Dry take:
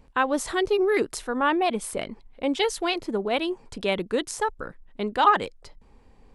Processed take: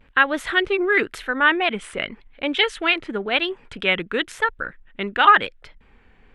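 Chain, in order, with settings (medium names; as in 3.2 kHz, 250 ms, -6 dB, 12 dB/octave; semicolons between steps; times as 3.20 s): high-order bell 2.2 kHz +13.5 dB; vibrato 0.94 Hz 74 cents; treble shelf 3.4 kHz -9 dB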